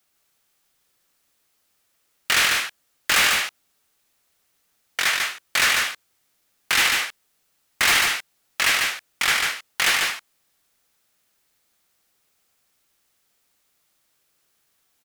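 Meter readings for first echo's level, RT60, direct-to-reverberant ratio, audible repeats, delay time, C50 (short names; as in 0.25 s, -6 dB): -3.5 dB, none, none, 1, 0.146 s, none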